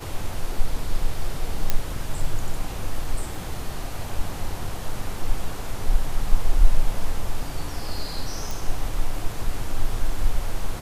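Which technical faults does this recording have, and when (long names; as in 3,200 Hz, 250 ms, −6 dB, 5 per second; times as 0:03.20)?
0:01.70: click −6 dBFS
0:03.35: drop-out 2.1 ms
0:08.51: click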